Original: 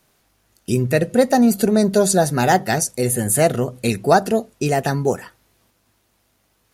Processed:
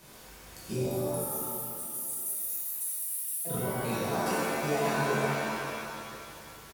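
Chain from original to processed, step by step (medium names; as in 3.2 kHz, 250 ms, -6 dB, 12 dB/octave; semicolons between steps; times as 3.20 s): reverb removal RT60 0.51 s; 0.85–3.45 s: inverse Chebyshev high-pass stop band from 3 kHz, stop band 70 dB; peak limiter -13 dBFS, peak gain reduction 11 dB; slow attack 268 ms; compression 6:1, threshold -43 dBFS, peak gain reduction 22 dB; feedback delay 490 ms, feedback 39%, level -18 dB; pitch-shifted reverb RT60 1.9 s, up +7 st, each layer -2 dB, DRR -8.5 dB; trim +4.5 dB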